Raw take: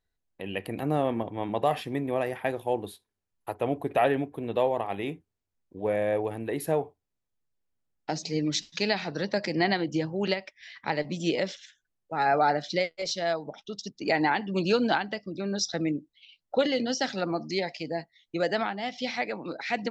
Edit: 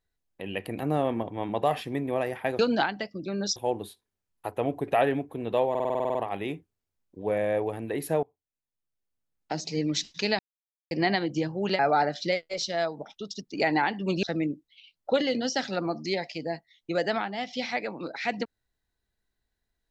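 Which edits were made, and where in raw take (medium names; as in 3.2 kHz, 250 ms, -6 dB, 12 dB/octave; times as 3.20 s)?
4.73 s: stutter 0.05 s, 10 plays
6.81–8.23 s: fade in, from -22.5 dB
8.97–9.49 s: mute
10.37–12.27 s: delete
14.71–15.68 s: move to 2.59 s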